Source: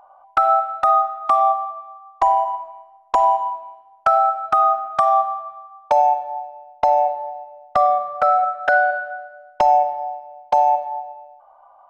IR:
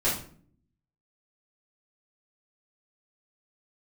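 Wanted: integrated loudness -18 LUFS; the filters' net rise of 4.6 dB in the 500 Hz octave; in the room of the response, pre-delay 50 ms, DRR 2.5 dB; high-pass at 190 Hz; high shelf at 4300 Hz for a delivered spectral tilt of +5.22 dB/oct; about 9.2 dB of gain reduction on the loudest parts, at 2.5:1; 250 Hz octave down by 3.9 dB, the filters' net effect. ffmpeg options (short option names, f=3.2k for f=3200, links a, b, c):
-filter_complex "[0:a]highpass=190,equalizer=f=250:t=o:g=-8,equalizer=f=500:t=o:g=7.5,highshelf=f=4.3k:g=9,acompressor=threshold=-23dB:ratio=2.5,asplit=2[a][b];[1:a]atrim=start_sample=2205,adelay=50[c];[b][c]afir=irnorm=-1:irlink=0,volume=-13.5dB[d];[a][d]amix=inputs=2:normalize=0,volume=4.5dB"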